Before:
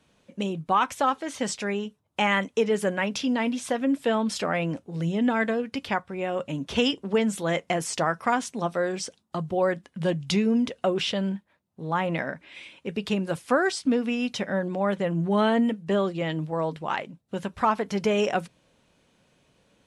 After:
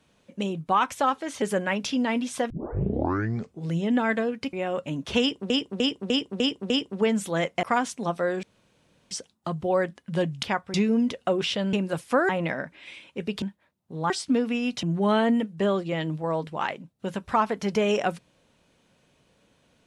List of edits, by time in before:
0:01.42–0:02.73: remove
0:03.81: tape start 1.17 s
0:05.84–0:06.15: move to 0:10.31
0:06.82–0:07.12: repeat, 6 plays
0:07.75–0:08.19: remove
0:08.99: splice in room tone 0.68 s
0:11.30–0:11.98: swap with 0:13.11–0:13.67
0:14.40–0:15.12: remove

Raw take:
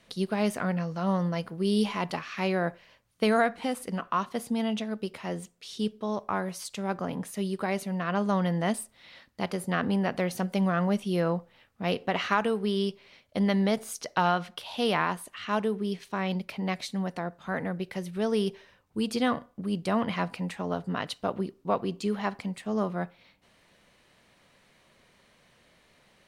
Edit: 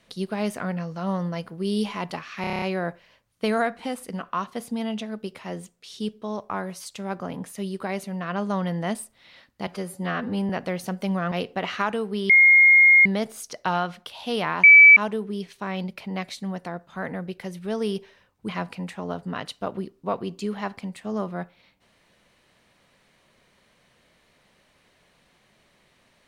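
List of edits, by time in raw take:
0:02.41: stutter 0.03 s, 8 plays
0:09.46–0:10.01: time-stretch 1.5×
0:10.83–0:11.83: remove
0:12.81–0:13.57: beep over 2,140 Hz −10.5 dBFS
0:15.15–0:15.48: beep over 2,300 Hz −6.5 dBFS
0:19.00–0:20.10: remove

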